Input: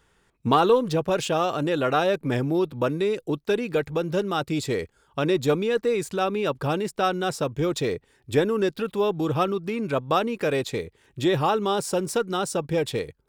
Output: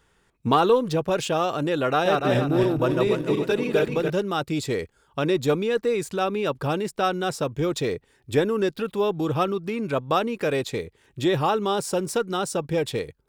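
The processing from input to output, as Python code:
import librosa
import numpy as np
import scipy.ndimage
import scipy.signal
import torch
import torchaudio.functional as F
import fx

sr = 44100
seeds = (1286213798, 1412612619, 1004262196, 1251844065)

y = fx.reverse_delay_fb(x, sr, ms=145, feedback_pct=60, wet_db=-2, at=(1.91, 4.1))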